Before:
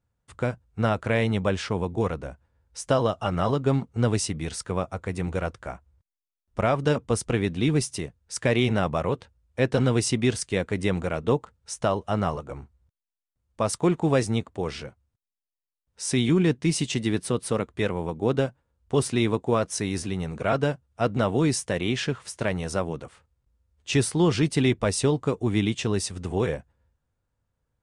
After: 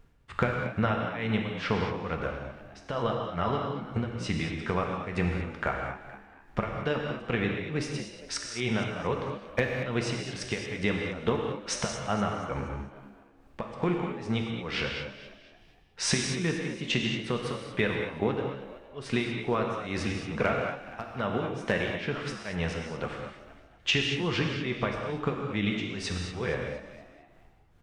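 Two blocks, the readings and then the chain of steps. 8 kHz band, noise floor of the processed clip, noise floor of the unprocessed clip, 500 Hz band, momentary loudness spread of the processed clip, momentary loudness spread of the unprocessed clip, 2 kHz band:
−7.0 dB, −57 dBFS, below −85 dBFS, −6.0 dB, 10 LU, 10 LU, +0.5 dB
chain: low-pass filter 4,200 Hz 12 dB per octave
parametric band 1,900 Hz +8 dB 2.2 octaves
downward compressor 12 to 1, threshold −33 dBFS, peak gain reduction 19.5 dB
background noise brown −66 dBFS
hard clipping −22 dBFS, distortion −34 dB
amplitude tremolo 2.3 Hz, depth 100%
echo with shifted repeats 234 ms, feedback 43%, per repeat +67 Hz, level −13.5 dB
reverb whose tail is shaped and stops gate 240 ms flat, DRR 1.5 dB
level +9 dB

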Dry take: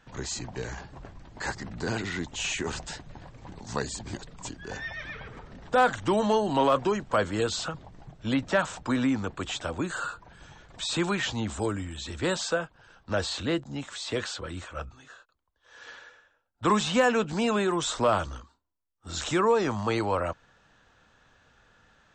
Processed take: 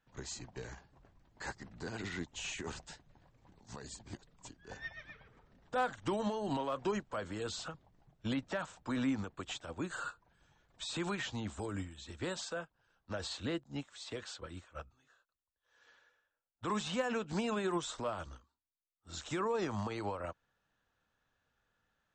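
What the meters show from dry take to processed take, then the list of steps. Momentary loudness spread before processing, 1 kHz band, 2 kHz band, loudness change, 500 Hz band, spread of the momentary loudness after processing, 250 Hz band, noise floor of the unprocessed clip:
18 LU, −12.0 dB, −11.5 dB, −10.5 dB, −12.0 dB, 16 LU, −9.5 dB, −69 dBFS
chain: brickwall limiter −25 dBFS, peak gain reduction 11 dB
expander for the loud parts 2.5 to 1, over −42 dBFS

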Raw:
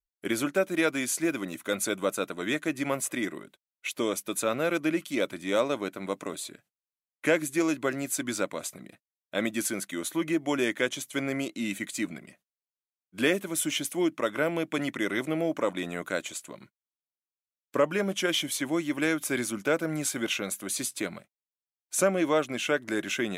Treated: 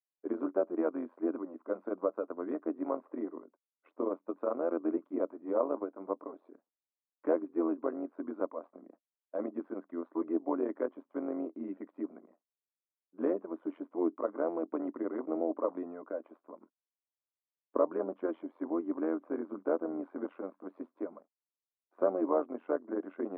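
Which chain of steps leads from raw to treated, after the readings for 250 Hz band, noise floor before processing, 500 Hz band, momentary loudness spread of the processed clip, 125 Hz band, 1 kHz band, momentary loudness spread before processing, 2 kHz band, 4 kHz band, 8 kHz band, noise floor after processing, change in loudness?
−5.0 dB, below −85 dBFS, −4.0 dB, 10 LU, below −20 dB, −6.0 dB, 8 LU, −23.0 dB, below −40 dB, below −40 dB, below −85 dBFS, −6.5 dB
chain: amplitude modulation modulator 86 Hz, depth 70%
elliptic band-pass filter 260–1,100 Hz, stop band 70 dB

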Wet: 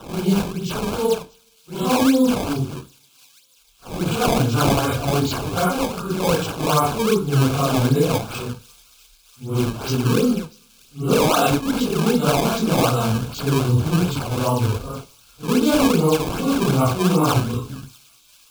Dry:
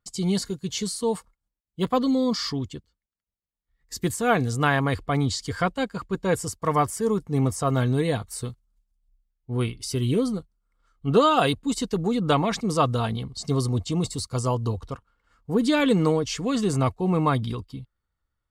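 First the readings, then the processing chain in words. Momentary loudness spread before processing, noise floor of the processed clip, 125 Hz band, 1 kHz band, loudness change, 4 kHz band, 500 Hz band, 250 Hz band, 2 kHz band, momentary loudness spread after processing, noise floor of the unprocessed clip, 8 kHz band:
11 LU, −55 dBFS, +5.0 dB, +4.0 dB, +5.0 dB, +5.0 dB, +4.5 dB, +5.0 dB, +3.0 dB, 12 LU, below −85 dBFS, +5.0 dB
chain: random phases in long frames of 200 ms
sample-and-hold swept by an LFO 18×, swing 160% 2.6 Hz
Butterworth band-reject 1,900 Hz, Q 3.5
delay with a high-pass on its return 641 ms, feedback 77%, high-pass 3,500 Hz, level −21 dB
coupled-rooms reverb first 0.51 s, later 1.9 s, from −25 dB, DRR 16.5 dB
boost into a limiter +12 dB
level −6.5 dB

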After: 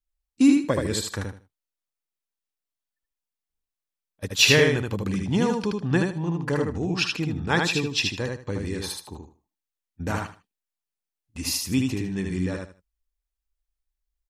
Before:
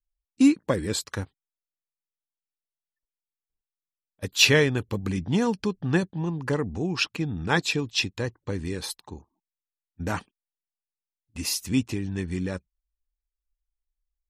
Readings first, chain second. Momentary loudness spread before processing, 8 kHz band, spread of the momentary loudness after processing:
15 LU, +1.5 dB, 16 LU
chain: repeating echo 77 ms, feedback 22%, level −3.5 dB

